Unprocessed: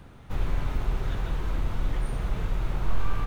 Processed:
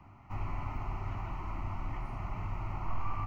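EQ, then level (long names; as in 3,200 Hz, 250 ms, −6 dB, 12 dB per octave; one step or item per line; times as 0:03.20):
three-way crossover with the lows and the highs turned down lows −13 dB, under 260 Hz, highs −15 dB, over 2,300 Hz
parametric band 100 Hz +12.5 dB 0.34 octaves
phaser with its sweep stopped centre 2,400 Hz, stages 8
+1.0 dB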